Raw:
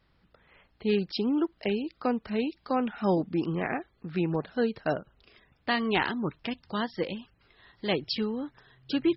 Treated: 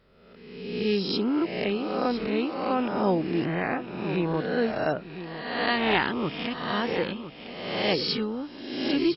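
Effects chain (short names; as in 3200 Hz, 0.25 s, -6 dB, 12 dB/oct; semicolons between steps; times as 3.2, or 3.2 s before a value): spectral swells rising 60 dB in 1.17 s; echo 1.007 s -11.5 dB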